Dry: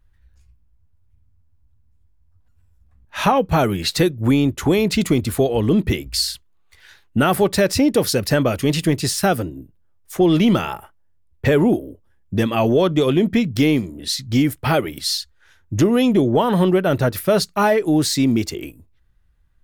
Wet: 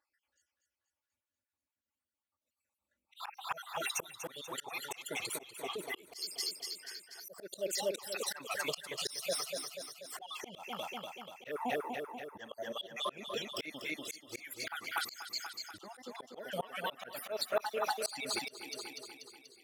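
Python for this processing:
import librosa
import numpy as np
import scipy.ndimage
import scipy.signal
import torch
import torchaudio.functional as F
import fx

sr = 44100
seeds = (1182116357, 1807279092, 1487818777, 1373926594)

y = fx.spec_dropout(x, sr, seeds[0], share_pct=61)
y = scipy.signal.sosfilt(scipy.signal.butter(2, 650.0, 'highpass', fs=sr, output='sos'), y)
y = fx.env_flanger(y, sr, rest_ms=3.5, full_db=-16.5)
y = fx.echo_feedback(y, sr, ms=242, feedback_pct=56, wet_db=-7)
y = fx.auto_swell(y, sr, attack_ms=286.0)
y = y * 10.0 ** (-1.5 / 20.0)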